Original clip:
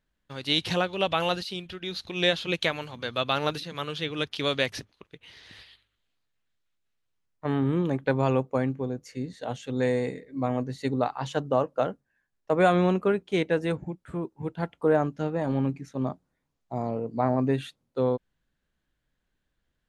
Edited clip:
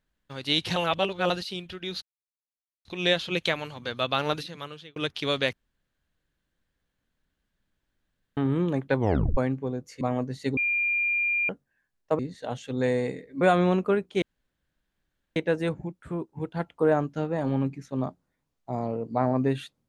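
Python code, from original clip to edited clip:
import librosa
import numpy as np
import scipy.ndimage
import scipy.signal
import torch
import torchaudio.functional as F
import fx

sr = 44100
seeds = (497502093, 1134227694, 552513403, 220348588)

y = fx.edit(x, sr, fx.reverse_span(start_s=0.76, length_s=0.54),
    fx.insert_silence(at_s=2.02, length_s=0.83),
    fx.fade_out_span(start_s=3.54, length_s=0.59),
    fx.room_tone_fill(start_s=4.7, length_s=2.84),
    fx.tape_stop(start_s=8.15, length_s=0.39),
    fx.move(start_s=9.18, length_s=1.22, to_s=12.58),
    fx.bleep(start_s=10.96, length_s=0.92, hz=2400.0, db=-22.5),
    fx.insert_room_tone(at_s=13.39, length_s=1.14), tone=tone)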